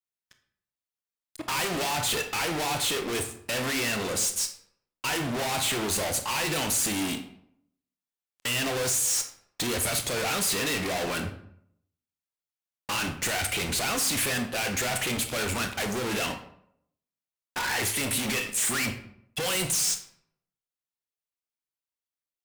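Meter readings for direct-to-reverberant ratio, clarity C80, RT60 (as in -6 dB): 6.0 dB, 13.0 dB, 0.70 s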